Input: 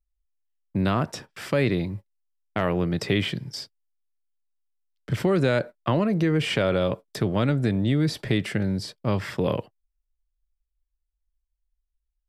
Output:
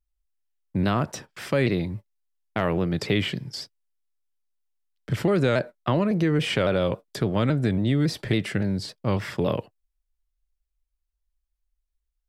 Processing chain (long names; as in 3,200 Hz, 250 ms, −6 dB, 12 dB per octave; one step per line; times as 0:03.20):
pitch modulation by a square or saw wave saw down 3.6 Hz, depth 100 cents